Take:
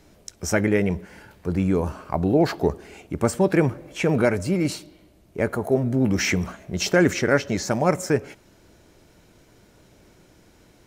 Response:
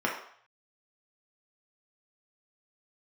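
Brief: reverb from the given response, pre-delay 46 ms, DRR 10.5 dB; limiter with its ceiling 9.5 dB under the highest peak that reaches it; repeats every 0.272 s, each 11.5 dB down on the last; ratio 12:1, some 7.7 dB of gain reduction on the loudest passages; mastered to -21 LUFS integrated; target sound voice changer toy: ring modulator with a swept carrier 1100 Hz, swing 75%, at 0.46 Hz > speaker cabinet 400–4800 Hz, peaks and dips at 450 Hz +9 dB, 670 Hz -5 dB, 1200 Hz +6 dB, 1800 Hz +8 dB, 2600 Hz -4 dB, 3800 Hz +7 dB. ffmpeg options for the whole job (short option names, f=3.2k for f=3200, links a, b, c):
-filter_complex "[0:a]acompressor=threshold=-21dB:ratio=12,alimiter=limit=-19.5dB:level=0:latency=1,aecho=1:1:272|544|816:0.266|0.0718|0.0194,asplit=2[a][b];[1:a]atrim=start_sample=2205,adelay=46[c];[b][c]afir=irnorm=-1:irlink=0,volume=-21.5dB[d];[a][d]amix=inputs=2:normalize=0,aeval=exprs='val(0)*sin(2*PI*1100*n/s+1100*0.75/0.46*sin(2*PI*0.46*n/s))':c=same,highpass=400,equalizer=f=450:t=q:w=4:g=9,equalizer=f=670:t=q:w=4:g=-5,equalizer=f=1.2k:t=q:w=4:g=6,equalizer=f=1.8k:t=q:w=4:g=8,equalizer=f=2.6k:t=q:w=4:g=-4,equalizer=f=3.8k:t=q:w=4:g=7,lowpass=f=4.8k:w=0.5412,lowpass=f=4.8k:w=1.3066,volume=7dB"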